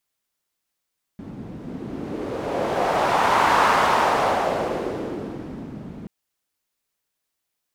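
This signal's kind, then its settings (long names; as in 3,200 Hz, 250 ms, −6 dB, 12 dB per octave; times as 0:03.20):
wind from filtered noise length 4.88 s, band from 200 Hz, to 1,000 Hz, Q 1.8, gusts 1, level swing 18.5 dB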